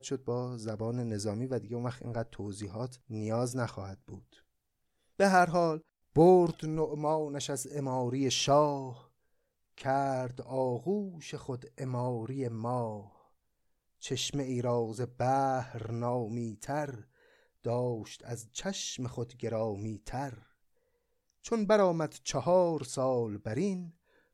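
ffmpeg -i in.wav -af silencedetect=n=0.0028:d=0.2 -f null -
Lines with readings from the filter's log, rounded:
silence_start: 4.34
silence_end: 5.19 | silence_duration: 0.85
silence_start: 5.81
silence_end: 6.16 | silence_duration: 0.35
silence_start: 9.05
silence_end: 9.78 | silence_duration: 0.73
silence_start: 13.16
silence_end: 14.01 | silence_duration: 0.85
silence_start: 17.03
silence_end: 17.64 | silence_duration: 0.61
silence_start: 20.42
silence_end: 21.44 | silence_duration: 1.02
silence_start: 23.91
silence_end: 24.33 | silence_duration: 0.42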